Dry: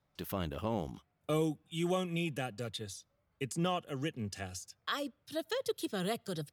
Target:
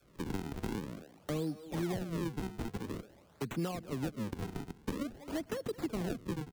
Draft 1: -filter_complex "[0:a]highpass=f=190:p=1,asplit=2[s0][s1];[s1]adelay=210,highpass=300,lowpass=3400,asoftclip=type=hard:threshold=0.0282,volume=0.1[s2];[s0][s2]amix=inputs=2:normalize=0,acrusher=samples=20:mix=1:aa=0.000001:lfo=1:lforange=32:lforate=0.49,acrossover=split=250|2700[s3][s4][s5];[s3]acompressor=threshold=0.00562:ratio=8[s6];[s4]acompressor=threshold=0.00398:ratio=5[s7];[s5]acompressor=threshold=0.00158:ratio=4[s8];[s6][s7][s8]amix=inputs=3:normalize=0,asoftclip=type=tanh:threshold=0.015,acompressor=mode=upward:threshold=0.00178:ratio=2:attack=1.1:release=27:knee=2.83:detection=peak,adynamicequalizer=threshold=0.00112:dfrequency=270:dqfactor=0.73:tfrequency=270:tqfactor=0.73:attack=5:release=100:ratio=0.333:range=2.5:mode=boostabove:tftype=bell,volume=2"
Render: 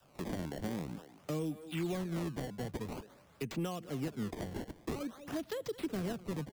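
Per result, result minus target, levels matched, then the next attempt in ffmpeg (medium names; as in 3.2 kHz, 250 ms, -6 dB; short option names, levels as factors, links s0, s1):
saturation: distortion +14 dB; decimation with a swept rate: distortion -5 dB
-filter_complex "[0:a]highpass=f=190:p=1,asplit=2[s0][s1];[s1]adelay=210,highpass=300,lowpass=3400,asoftclip=type=hard:threshold=0.0282,volume=0.1[s2];[s0][s2]amix=inputs=2:normalize=0,acrusher=samples=20:mix=1:aa=0.000001:lfo=1:lforange=32:lforate=0.49,acrossover=split=250|2700[s3][s4][s5];[s3]acompressor=threshold=0.00562:ratio=8[s6];[s4]acompressor=threshold=0.00398:ratio=5[s7];[s5]acompressor=threshold=0.00158:ratio=4[s8];[s6][s7][s8]amix=inputs=3:normalize=0,asoftclip=type=tanh:threshold=0.0398,acompressor=mode=upward:threshold=0.00178:ratio=2:attack=1.1:release=27:knee=2.83:detection=peak,adynamicequalizer=threshold=0.00112:dfrequency=270:dqfactor=0.73:tfrequency=270:tqfactor=0.73:attack=5:release=100:ratio=0.333:range=2.5:mode=boostabove:tftype=bell,volume=2"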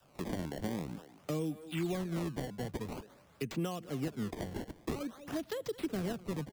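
decimation with a swept rate: distortion -5 dB
-filter_complex "[0:a]highpass=f=190:p=1,asplit=2[s0][s1];[s1]adelay=210,highpass=300,lowpass=3400,asoftclip=type=hard:threshold=0.0282,volume=0.1[s2];[s0][s2]amix=inputs=2:normalize=0,acrusher=samples=44:mix=1:aa=0.000001:lfo=1:lforange=70.4:lforate=0.49,acrossover=split=250|2700[s3][s4][s5];[s3]acompressor=threshold=0.00562:ratio=8[s6];[s4]acompressor=threshold=0.00398:ratio=5[s7];[s5]acompressor=threshold=0.00158:ratio=4[s8];[s6][s7][s8]amix=inputs=3:normalize=0,asoftclip=type=tanh:threshold=0.0398,acompressor=mode=upward:threshold=0.00178:ratio=2:attack=1.1:release=27:knee=2.83:detection=peak,adynamicequalizer=threshold=0.00112:dfrequency=270:dqfactor=0.73:tfrequency=270:tqfactor=0.73:attack=5:release=100:ratio=0.333:range=2.5:mode=boostabove:tftype=bell,volume=2"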